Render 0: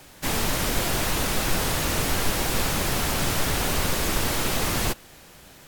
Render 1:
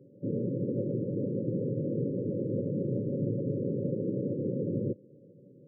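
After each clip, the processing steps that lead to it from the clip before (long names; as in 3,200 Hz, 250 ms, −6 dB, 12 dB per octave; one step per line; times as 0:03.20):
brick-wall band-pass 100–580 Hz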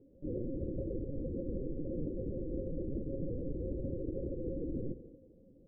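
on a send at −14 dB: convolution reverb RT60 1.2 s, pre-delay 25 ms
on the sum: linear-prediction vocoder at 8 kHz pitch kept
level −6 dB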